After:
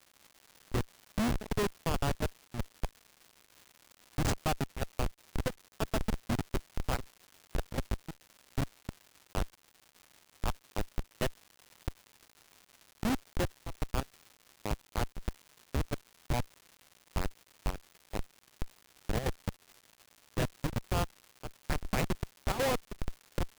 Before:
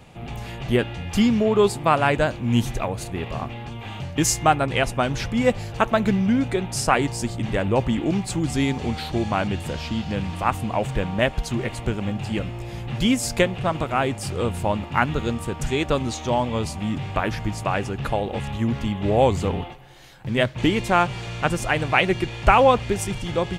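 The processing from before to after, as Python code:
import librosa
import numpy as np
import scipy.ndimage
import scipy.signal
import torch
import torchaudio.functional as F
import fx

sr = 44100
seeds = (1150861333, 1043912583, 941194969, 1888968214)

y = fx.schmitt(x, sr, flips_db=-15.0)
y = fx.chopper(y, sr, hz=2.7, depth_pct=65, duty_pct=80)
y = fx.dmg_crackle(y, sr, seeds[0], per_s=290.0, level_db=-38.0)
y = y * 10.0 ** (-5.5 / 20.0)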